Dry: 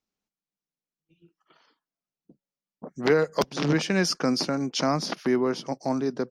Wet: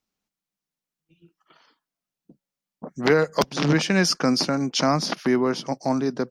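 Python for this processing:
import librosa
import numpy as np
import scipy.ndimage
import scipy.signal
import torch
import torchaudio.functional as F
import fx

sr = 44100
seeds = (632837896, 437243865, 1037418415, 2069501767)

y = fx.peak_eq(x, sr, hz=410.0, db=-3.0, octaves=0.9)
y = y * librosa.db_to_amplitude(4.5)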